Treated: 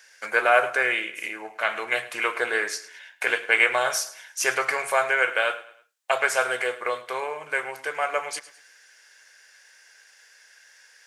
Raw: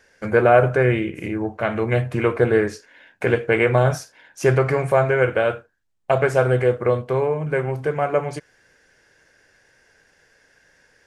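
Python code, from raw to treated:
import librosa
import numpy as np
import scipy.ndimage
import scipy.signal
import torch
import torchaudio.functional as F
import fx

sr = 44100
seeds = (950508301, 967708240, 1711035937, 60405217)

y = scipy.signal.sosfilt(scipy.signal.butter(2, 930.0, 'highpass', fs=sr, output='sos'), x)
y = fx.high_shelf(y, sr, hz=2400.0, db=10.5)
y = fx.echo_feedback(y, sr, ms=106, feedback_pct=38, wet_db=-17.0)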